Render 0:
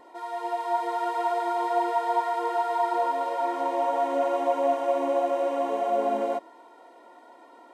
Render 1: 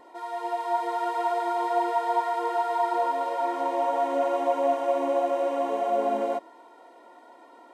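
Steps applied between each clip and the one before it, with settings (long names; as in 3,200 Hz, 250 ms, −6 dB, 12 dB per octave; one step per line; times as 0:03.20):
no processing that can be heard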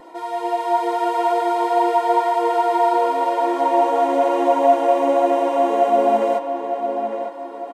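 low-shelf EQ 160 Hz +10 dB
comb filter 6.1 ms, depth 42%
feedback echo with a low-pass in the loop 905 ms, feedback 45%, low-pass 2,900 Hz, level −7 dB
level +7 dB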